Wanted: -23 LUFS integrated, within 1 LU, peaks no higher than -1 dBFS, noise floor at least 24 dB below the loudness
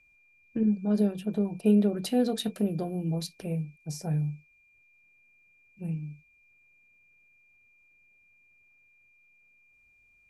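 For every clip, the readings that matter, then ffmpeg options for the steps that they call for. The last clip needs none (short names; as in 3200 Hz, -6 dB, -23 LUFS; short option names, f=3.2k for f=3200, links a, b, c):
steady tone 2400 Hz; tone level -61 dBFS; loudness -29.0 LUFS; peak -12.5 dBFS; loudness target -23.0 LUFS
-> -af "bandreject=f=2.4k:w=30"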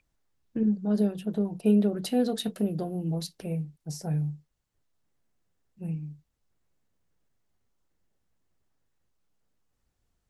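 steady tone none; loudness -29.0 LUFS; peak -12.0 dBFS; loudness target -23.0 LUFS
-> -af "volume=6dB"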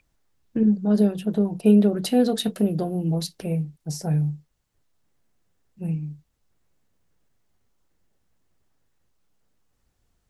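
loudness -23.0 LUFS; peak -6.0 dBFS; noise floor -72 dBFS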